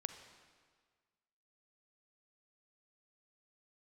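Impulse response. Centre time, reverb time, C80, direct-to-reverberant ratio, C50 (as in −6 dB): 22 ms, 1.7 s, 10.0 dB, 8.0 dB, 8.5 dB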